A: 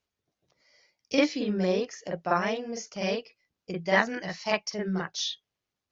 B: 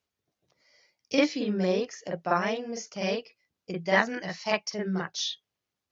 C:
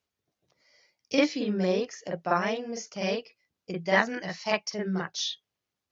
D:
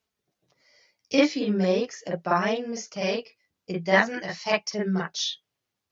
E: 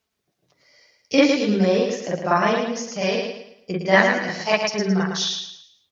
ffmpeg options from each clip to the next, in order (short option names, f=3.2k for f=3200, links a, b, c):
-af "highpass=57"
-af anull
-af "flanger=delay=4.5:depth=6.5:regen=-38:speed=0.4:shape=sinusoidal,volume=6.5dB"
-af "aecho=1:1:110|220|330|440|550:0.562|0.208|0.077|0.0285|0.0105,volume=4dB"